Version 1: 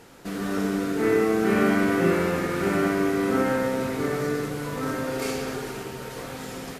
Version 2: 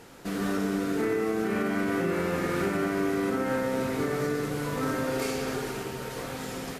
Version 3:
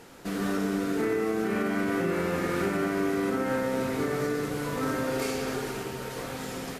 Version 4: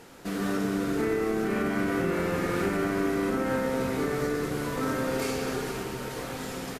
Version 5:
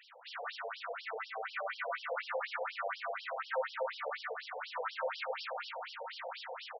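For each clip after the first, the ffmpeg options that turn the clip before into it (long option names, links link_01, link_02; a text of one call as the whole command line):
ffmpeg -i in.wav -af "alimiter=limit=-18.5dB:level=0:latency=1:release=244" out.wav
ffmpeg -i in.wav -af "bandreject=frequency=50:width_type=h:width=6,bandreject=frequency=100:width_type=h:width=6,bandreject=frequency=150:width_type=h:width=6" out.wav
ffmpeg -i in.wav -filter_complex "[0:a]asplit=8[link_01][link_02][link_03][link_04][link_05][link_06][link_07][link_08];[link_02]adelay=228,afreqshift=-70,volume=-13dB[link_09];[link_03]adelay=456,afreqshift=-140,volume=-17.2dB[link_10];[link_04]adelay=684,afreqshift=-210,volume=-21.3dB[link_11];[link_05]adelay=912,afreqshift=-280,volume=-25.5dB[link_12];[link_06]adelay=1140,afreqshift=-350,volume=-29.6dB[link_13];[link_07]adelay=1368,afreqshift=-420,volume=-33.8dB[link_14];[link_08]adelay=1596,afreqshift=-490,volume=-37.9dB[link_15];[link_01][link_09][link_10][link_11][link_12][link_13][link_14][link_15]amix=inputs=8:normalize=0" out.wav
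ffmpeg -i in.wav -af "afftfilt=real='re*between(b*sr/1024,620*pow(4100/620,0.5+0.5*sin(2*PI*4.1*pts/sr))/1.41,620*pow(4100/620,0.5+0.5*sin(2*PI*4.1*pts/sr))*1.41)':imag='im*between(b*sr/1024,620*pow(4100/620,0.5+0.5*sin(2*PI*4.1*pts/sr))/1.41,620*pow(4100/620,0.5+0.5*sin(2*PI*4.1*pts/sr))*1.41)':win_size=1024:overlap=0.75,volume=1dB" out.wav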